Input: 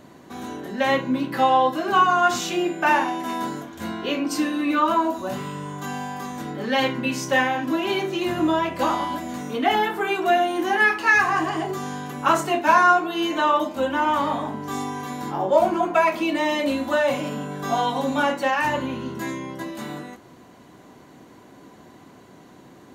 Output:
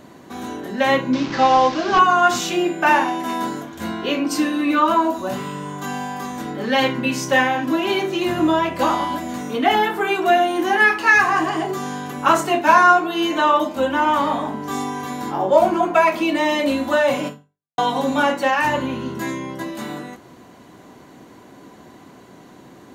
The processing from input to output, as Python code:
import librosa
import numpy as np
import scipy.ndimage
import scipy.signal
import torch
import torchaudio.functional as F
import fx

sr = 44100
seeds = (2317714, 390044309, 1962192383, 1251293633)

y = fx.delta_mod(x, sr, bps=32000, step_db=-27.5, at=(1.13, 1.99))
y = fx.edit(y, sr, fx.fade_out_span(start_s=17.27, length_s=0.51, curve='exp'), tone=tone)
y = fx.hum_notches(y, sr, base_hz=50, count=3)
y = y * librosa.db_to_amplitude(3.5)